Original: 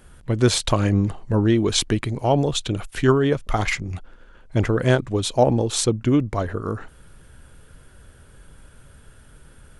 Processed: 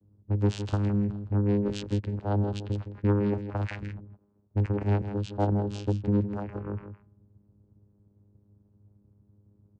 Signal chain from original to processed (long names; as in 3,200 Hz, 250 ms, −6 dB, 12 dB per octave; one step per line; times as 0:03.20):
channel vocoder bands 8, saw 102 Hz
low-pass that shuts in the quiet parts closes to 340 Hz, open at −20 dBFS
soft clipping −10 dBFS, distortion −21 dB
on a send: single-tap delay 162 ms −10 dB
on the sum: level −4.5 dB